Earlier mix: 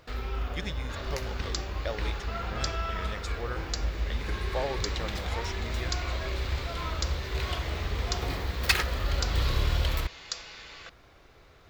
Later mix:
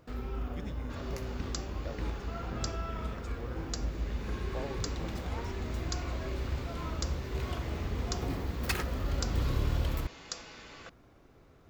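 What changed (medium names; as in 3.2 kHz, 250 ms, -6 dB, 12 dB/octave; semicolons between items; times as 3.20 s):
speech -11.0 dB; first sound -5.0 dB; master: add ten-band graphic EQ 125 Hz +4 dB, 250 Hz +9 dB, 2 kHz -4 dB, 4 kHz -7 dB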